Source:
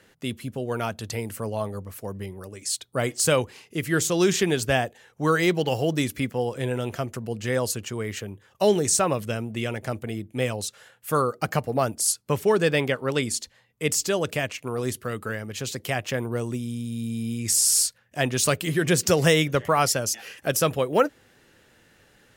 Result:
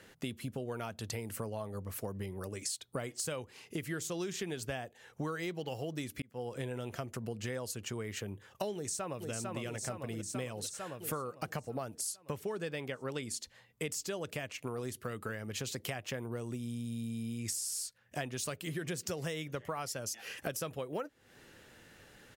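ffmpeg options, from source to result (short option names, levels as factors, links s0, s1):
-filter_complex "[0:a]asplit=2[s0][s1];[s1]afade=t=in:st=8.75:d=0.01,afade=t=out:st=9.31:d=0.01,aecho=0:1:450|900|1350|1800|2250|2700|3150|3600|4050:0.398107|0.25877|0.1682|0.10933|0.0710646|0.046192|0.0300248|0.0195161|0.0126855[s2];[s0][s2]amix=inputs=2:normalize=0,asplit=2[s3][s4];[s3]atrim=end=6.22,asetpts=PTS-STARTPTS,afade=t=out:st=6.216:d=0.004:c=hsin[s5];[s4]atrim=start=6.22,asetpts=PTS-STARTPTS,afade=t=in:d=0.55[s6];[s5][s6]concat=n=2:v=0:a=1,acompressor=threshold=0.0178:ratio=12"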